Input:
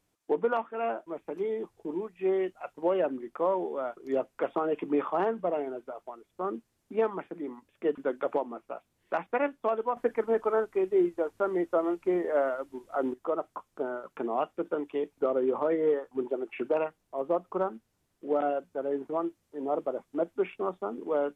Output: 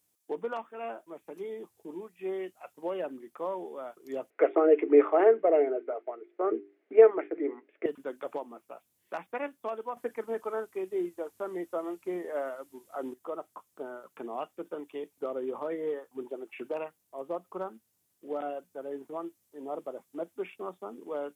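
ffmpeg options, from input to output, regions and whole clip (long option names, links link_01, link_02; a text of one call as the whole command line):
ffmpeg -i in.wav -filter_complex "[0:a]asettb=1/sr,asplit=3[link_01][link_02][link_03];[link_01]atrim=end=4.304[link_04];[link_02]atrim=start=4.3:end=7.86,asetpts=PTS-STARTPTS,afade=type=in:duration=0.004:curve=qsin,afade=type=out:start_time=3.556:duration=0.004:curve=qsin,bandreject=frequency=50:width_type=h:width=6,bandreject=frequency=100:width_type=h:width=6,bandreject=frequency=150:width_type=h:width=6,bandreject=frequency=200:width_type=h:width=6,bandreject=frequency=250:width_type=h:width=6,bandreject=frequency=300:width_type=h:width=6,bandreject=frequency=350:width_type=h:width=6,bandreject=frequency=400:width_type=h:width=6,acontrast=67,highpass=frequency=300:width=0.5412,highpass=frequency=300:width=1.3066,equalizer=frequency=310:width_type=q:width=4:gain=9,equalizer=frequency=440:width_type=q:width=4:gain=10,equalizer=frequency=640:width_type=q:width=4:gain=7,equalizer=frequency=980:width_type=q:width=4:gain=-7,equalizer=frequency=1400:width_type=q:width=4:gain=3,equalizer=frequency=2100:width_type=q:width=4:gain=8,lowpass=frequency=2400:width=0.5412,lowpass=frequency=2400:width=1.3066[link_05];[link_03]atrim=start=7.856[link_06];[link_04][link_05]acrossfade=duration=0.004:curve1=hsin:curve2=qsin[link_07];[link_07][link_06]acrossfade=duration=0.004:curve1=qsin:curve2=hsin,highpass=89,aemphasis=mode=production:type=75fm,bandreject=frequency=1400:width=28,volume=-6.5dB" out.wav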